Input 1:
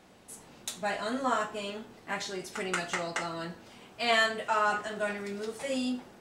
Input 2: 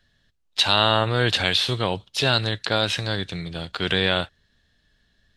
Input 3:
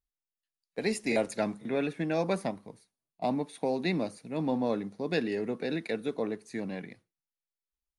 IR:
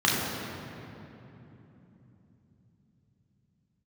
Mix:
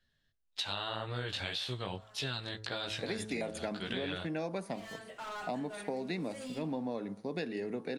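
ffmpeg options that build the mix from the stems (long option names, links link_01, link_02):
-filter_complex "[0:a]asoftclip=type=hard:threshold=-29.5dB,adelay=700,volume=-10dB[link_01];[1:a]flanger=delay=15:depth=6.4:speed=1.8,volume=-9dB,asplit=2[link_02][link_03];[2:a]adelay=2250,volume=-1.5dB[link_04];[link_03]apad=whole_len=304635[link_05];[link_01][link_05]sidechaincompress=threshold=-56dB:ratio=5:attack=43:release=575[link_06];[link_06][link_02][link_04]amix=inputs=3:normalize=0,bandreject=frequency=108.1:width_type=h:width=4,bandreject=frequency=216.2:width_type=h:width=4,bandreject=frequency=324.3:width_type=h:width=4,bandreject=frequency=432.4:width_type=h:width=4,bandreject=frequency=540.5:width_type=h:width=4,bandreject=frequency=648.6:width_type=h:width=4,bandreject=frequency=756.7:width_type=h:width=4,bandreject=frequency=864.8:width_type=h:width=4,bandreject=frequency=972.9:width_type=h:width=4,bandreject=frequency=1081:width_type=h:width=4,bandreject=frequency=1189.1:width_type=h:width=4,bandreject=frequency=1297.2:width_type=h:width=4,bandreject=frequency=1405.3:width_type=h:width=4,bandreject=frequency=1513.4:width_type=h:width=4,bandreject=frequency=1621.5:width_type=h:width=4,acompressor=threshold=-33dB:ratio=6"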